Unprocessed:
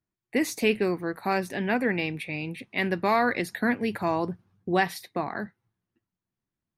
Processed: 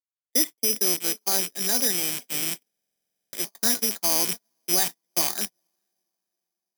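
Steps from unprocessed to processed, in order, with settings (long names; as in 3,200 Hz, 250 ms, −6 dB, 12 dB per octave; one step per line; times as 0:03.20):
loose part that buzzes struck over −39 dBFS, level −18 dBFS
on a send: feedback delay with all-pass diffusion 460 ms, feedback 53%, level −14 dB
on the sum: brickwall limiter −16.5 dBFS, peak gain reduction 6 dB
in parallel at +0.5 dB: speech leveller within 5 dB 0.5 s
on the sum: noise gate −22 dBFS, range −42 dB
three-way crossover with the lows and the highs turned down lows −14 dB, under 170 Hz, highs −15 dB, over 2,500 Hz
bad sample-rate conversion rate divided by 8×, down filtered, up zero stuff
buffer that repeats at 0:02.68, samples 2,048, times 13
level −10 dB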